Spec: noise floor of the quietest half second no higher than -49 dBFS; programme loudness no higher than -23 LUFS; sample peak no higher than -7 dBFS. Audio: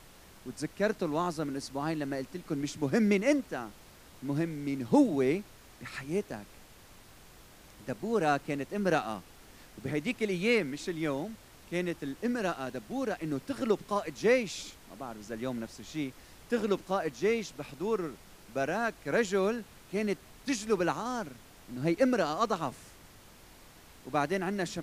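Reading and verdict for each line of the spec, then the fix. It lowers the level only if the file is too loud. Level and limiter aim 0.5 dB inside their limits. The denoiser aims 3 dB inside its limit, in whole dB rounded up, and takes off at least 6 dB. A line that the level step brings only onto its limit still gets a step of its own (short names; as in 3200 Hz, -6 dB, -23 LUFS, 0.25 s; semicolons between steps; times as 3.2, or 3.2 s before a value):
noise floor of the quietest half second -54 dBFS: OK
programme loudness -32.0 LUFS: OK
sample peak -11.5 dBFS: OK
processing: none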